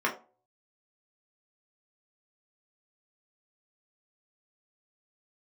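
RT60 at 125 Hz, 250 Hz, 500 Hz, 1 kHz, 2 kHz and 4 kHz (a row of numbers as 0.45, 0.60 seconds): 0.40, 0.35, 0.40, 0.35, 0.25, 0.20 seconds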